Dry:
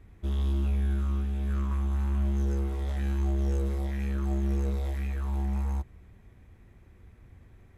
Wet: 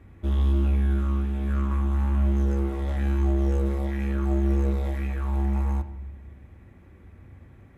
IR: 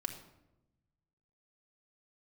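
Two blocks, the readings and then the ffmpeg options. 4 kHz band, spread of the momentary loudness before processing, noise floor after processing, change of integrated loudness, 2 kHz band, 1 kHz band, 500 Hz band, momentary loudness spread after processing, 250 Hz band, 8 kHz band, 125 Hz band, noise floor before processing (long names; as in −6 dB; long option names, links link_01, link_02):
+1.5 dB, 4 LU, −51 dBFS, +4.5 dB, +5.0 dB, +6.0 dB, +6.5 dB, 6 LU, +6.0 dB, can't be measured, +4.0 dB, −55 dBFS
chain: -filter_complex "[0:a]highpass=64,asplit=2[link_01][link_02];[1:a]atrim=start_sample=2205,lowpass=3100[link_03];[link_02][link_03]afir=irnorm=-1:irlink=0,volume=1.5dB[link_04];[link_01][link_04]amix=inputs=2:normalize=0"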